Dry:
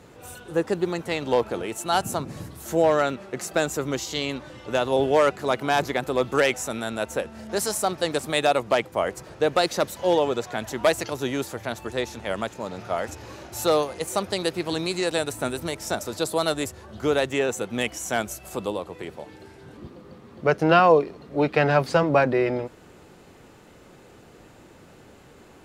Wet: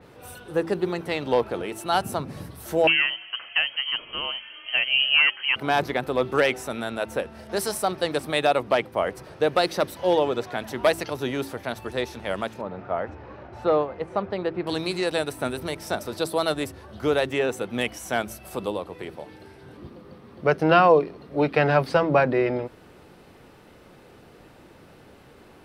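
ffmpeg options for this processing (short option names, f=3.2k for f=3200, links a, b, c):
-filter_complex "[0:a]asettb=1/sr,asplit=3[a][b][c];[a]atrim=end=2.874[d];[b]atrim=start=2.87:end=5.56,asetpts=PTS-STARTPTS,afade=t=in:d=0.004:c=qsin,afade=t=out:st=2.686:d=0.004:c=qsin,lowpass=f=2.8k:t=q:w=0.5098,lowpass=f=2.8k:t=q:w=0.6013,lowpass=f=2.8k:t=q:w=0.9,lowpass=f=2.8k:t=q:w=2.563,afreqshift=-3300[e];[c]atrim=start=5.556[f];[d][e]acrossfade=d=0.004:c1=hsin:c2=qsin[g];[g][f]acrossfade=d=0.004:c1=qsin:c2=hsin,asettb=1/sr,asplit=3[h][i][j];[h]atrim=end=12.614[k];[i]atrim=start=12.61:end=14.67,asetpts=PTS-STARTPTS,afade=t=in:d=0.004:c=qsin,afade=t=out:st=2.056:d=0.004:c=qsin,lowpass=1.7k[l];[j]atrim=start=14.666[m];[k][l]acrossfade=d=0.004:c1=hsin:c2=qsin[n];[n][m]acrossfade=d=0.004:c1=qsin:c2=hsin,equalizer=f=7k:w=4.3:g=-11.5,bandreject=f=55.08:t=h:w=4,bandreject=f=110.16:t=h:w=4,bandreject=f=165.24:t=h:w=4,bandreject=f=220.32:t=h:w=4,bandreject=f=275.4:t=h:w=4,bandreject=f=330.48:t=h:w=4,bandreject=f=385.56:t=h:w=4,adynamicequalizer=threshold=0.00794:dfrequency=4500:dqfactor=0.7:tfrequency=4500:tqfactor=0.7:attack=5:release=100:ratio=0.375:range=2:mode=cutabove:tftype=highshelf"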